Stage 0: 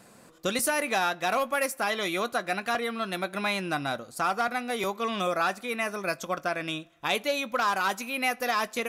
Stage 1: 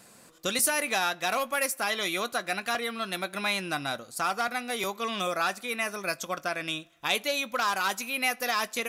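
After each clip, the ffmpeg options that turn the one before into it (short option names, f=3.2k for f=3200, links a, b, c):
-af "highshelf=f=2.1k:g=8,volume=-3.5dB"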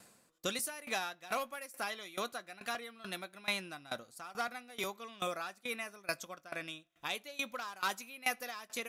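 -af "aeval=exprs='val(0)*pow(10,-20*if(lt(mod(2.3*n/s,1),2*abs(2.3)/1000),1-mod(2.3*n/s,1)/(2*abs(2.3)/1000),(mod(2.3*n/s,1)-2*abs(2.3)/1000)/(1-2*abs(2.3)/1000))/20)':c=same,volume=-4dB"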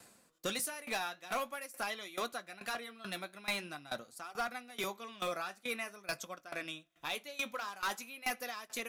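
-filter_complex "[0:a]acrossover=split=120[a][b];[b]asoftclip=type=hard:threshold=-30.5dB[c];[a][c]amix=inputs=2:normalize=0,flanger=delay=2.3:depth=8.2:regen=-68:speed=0.46:shape=triangular,volume=5.5dB"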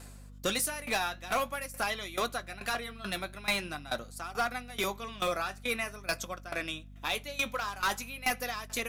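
-af "aeval=exprs='val(0)+0.002*(sin(2*PI*50*n/s)+sin(2*PI*2*50*n/s)/2+sin(2*PI*3*50*n/s)/3+sin(2*PI*4*50*n/s)/4+sin(2*PI*5*50*n/s)/5)':c=same,volume=6dB"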